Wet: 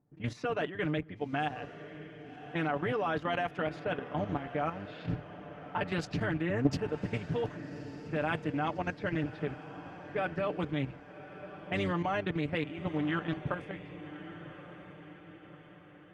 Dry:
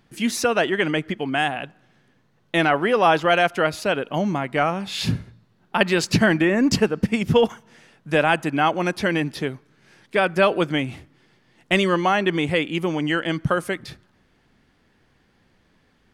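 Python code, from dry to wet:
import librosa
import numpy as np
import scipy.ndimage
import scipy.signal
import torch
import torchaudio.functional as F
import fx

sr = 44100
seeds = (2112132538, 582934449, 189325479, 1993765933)

y = fx.octave_divider(x, sr, octaves=1, level_db=-1.0)
y = fx.highpass(y, sr, hz=98.0, slope=6)
y = fx.env_lowpass(y, sr, base_hz=740.0, full_db=-15.0)
y = fx.high_shelf(y, sr, hz=3800.0, db=-12.0)
y = y + 0.63 * np.pad(y, (int(6.8 * sr / 1000.0), 0))[:len(y)]
y = fx.level_steps(y, sr, step_db=11)
y = fx.echo_diffused(y, sr, ms=1165, feedback_pct=49, wet_db=-13)
y = fx.doppler_dist(y, sr, depth_ms=0.41)
y = y * 10.0 ** (-9.0 / 20.0)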